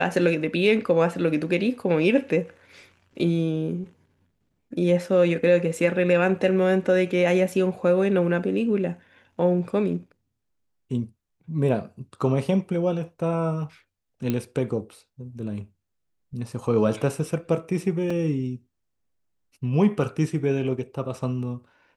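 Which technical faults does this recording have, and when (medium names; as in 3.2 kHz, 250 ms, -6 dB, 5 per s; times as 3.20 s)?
14.30 s: pop -13 dBFS
18.10 s: dropout 4 ms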